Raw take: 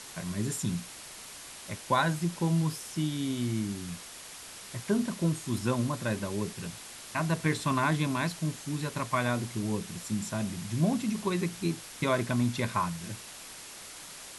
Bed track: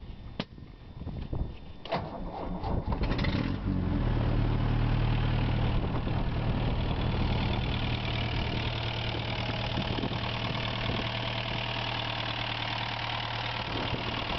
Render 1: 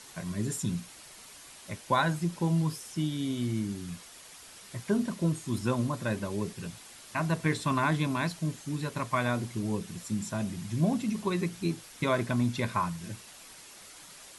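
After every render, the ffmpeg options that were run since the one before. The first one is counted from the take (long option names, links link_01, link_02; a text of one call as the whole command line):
ffmpeg -i in.wav -af "afftdn=noise_reduction=6:noise_floor=-46" out.wav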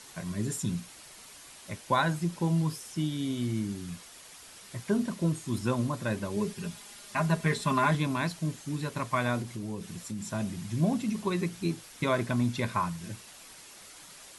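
ffmpeg -i in.wav -filter_complex "[0:a]asettb=1/sr,asplit=3[link_01][link_02][link_03];[link_01]atrim=end=6.364[link_04];[link_02]atrim=start=6.36:end=7.95,asetpts=PTS-STARTPTS,afade=type=in:duration=0.004:curve=qsin,afade=type=out:start_time=1.586:duration=0.004:curve=qsin,aecho=1:1:4.9:0.65,atrim=end_sample=70119[link_05];[link_03]atrim=start=7.946[link_06];[link_04][link_05]acrossfade=duration=0.004:curve1=hsin:curve2=qsin[link_07];[link_07][link_06]acrossfade=duration=0.004:curve1=qsin:curve2=hsin,asettb=1/sr,asplit=3[link_08][link_09][link_10];[link_08]atrim=end=9.424[link_11];[link_09]atrim=start=9.42:end=10.32,asetpts=PTS-STARTPTS,afade=type=in:duration=0.004:curve=qsin,afade=type=out:start_time=0.896:duration=0.004:curve=qsin,acompressor=threshold=-34dB:ratio=2.5:attack=3.2:release=140:knee=1:detection=peak[link_12];[link_10]atrim=start=10.316[link_13];[link_11][link_12]acrossfade=duration=0.004:curve1=hsin:curve2=qsin[link_14];[link_14][link_13]acrossfade=duration=0.004:curve1=qsin:curve2=hsin" out.wav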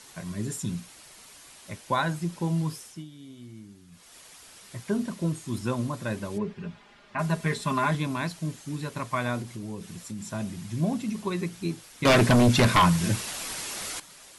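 ffmpeg -i in.wav -filter_complex "[0:a]asplit=3[link_01][link_02][link_03];[link_01]afade=type=out:start_time=6.37:duration=0.02[link_04];[link_02]lowpass=2300,afade=type=in:start_time=6.37:duration=0.02,afade=type=out:start_time=7.18:duration=0.02[link_05];[link_03]afade=type=in:start_time=7.18:duration=0.02[link_06];[link_04][link_05][link_06]amix=inputs=3:normalize=0,asettb=1/sr,asplit=3[link_07][link_08][link_09];[link_07]atrim=end=12.054[link_10];[link_08]atrim=start=12.05:end=14,asetpts=PTS-STARTPTS,afade=type=in:duration=0.004:curve=qsin,afade=type=out:start_time=1.946:duration=0.004:curve=qsin,aeval=exprs='0.2*sin(PI/2*3.55*val(0)/0.2)':channel_layout=same[link_11];[link_09]atrim=start=13.996[link_12];[link_10][link_11]acrossfade=duration=0.004:curve1=hsin:curve2=qsin[link_13];[link_13][link_12]acrossfade=duration=0.004:curve1=qsin:curve2=hsin,asplit=3[link_14][link_15][link_16];[link_14]atrim=end=3.05,asetpts=PTS-STARTPTS,afade=type=out:start_time=2.8:duration=0.25:silence=0.199526[link_17];[link_15]atrim=start=3.05:end=3.91,asetpts=PTS-STARTPTS,volume=-14dB[link_18];[link_16]atrim=start=3.91,asetpts=PTS-STARTPTS,afade=type=in:duration=0.25:silence=0.199526[link_19];[link_17][link_18][link_19]concat=n=3:v=0:a=1" out.wav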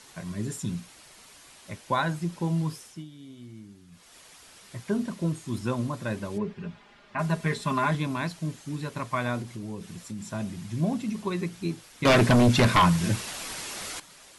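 ffmpeg -i in.wav -af "highshelf=frequency=7300:gain=-5" out.wav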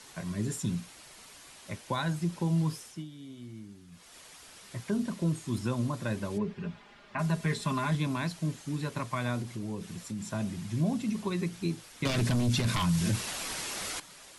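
ffmpeg -i in.wav -filter_complex "[0:a]acrossover=split=230|3000[link_01][link_02][link_03];[link_02]acompressor=threshold=-34dB:ratio=2.5[link_04];[link_01][link_04][link_03]amix=inputs=3:normalize=0,alimiter=limit=-20dB:level=0:latency=1:release=20" out.wav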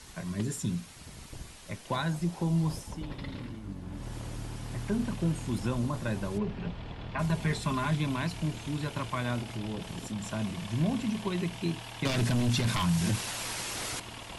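ffmpeg -i in.wav -i bed.wav -filter_complex "[1:a]volume=-11.5dB[link_01];[0:a][link_01]amix=inputs=2:normalize=0" out.wav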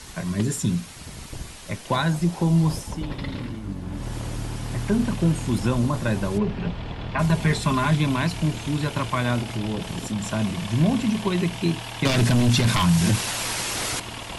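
ffmpeg -i in.wav -af "volume=8.5dB" out.wav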